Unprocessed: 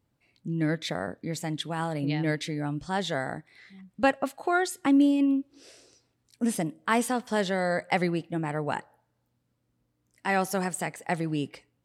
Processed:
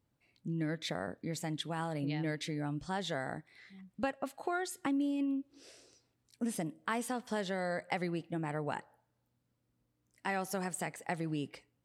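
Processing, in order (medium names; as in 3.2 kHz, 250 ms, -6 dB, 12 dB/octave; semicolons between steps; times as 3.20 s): compression 3:1, threshold -28 dBFS, peak gain reduction 9 dB; trim -4.5 dB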